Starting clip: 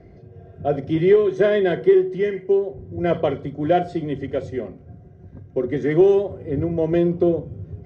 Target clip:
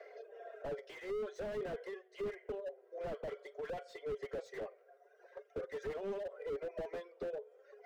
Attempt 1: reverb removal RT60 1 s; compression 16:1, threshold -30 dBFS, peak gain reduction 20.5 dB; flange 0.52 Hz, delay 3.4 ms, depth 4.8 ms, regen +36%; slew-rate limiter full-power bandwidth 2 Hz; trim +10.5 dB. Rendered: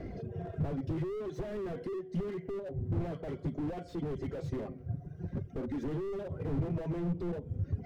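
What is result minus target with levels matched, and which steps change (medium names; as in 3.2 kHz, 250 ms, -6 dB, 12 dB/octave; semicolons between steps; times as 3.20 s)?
500 Hz band -4.5 dB
add after compression: rippled Chebyshev high-pass 410 Hz, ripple 6 dB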